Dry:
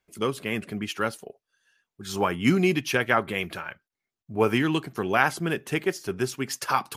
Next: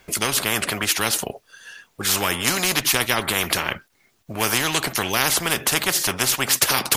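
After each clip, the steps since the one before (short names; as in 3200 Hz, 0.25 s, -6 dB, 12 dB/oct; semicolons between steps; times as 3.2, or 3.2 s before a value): spectral compressor 4:1; gain +3 dB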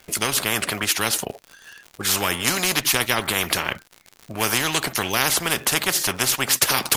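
in parallel at -6 dB: crossover distortion -33.5 dBFS; on the sum: crackle 110/s -26 dBFS; gain -3.5 dB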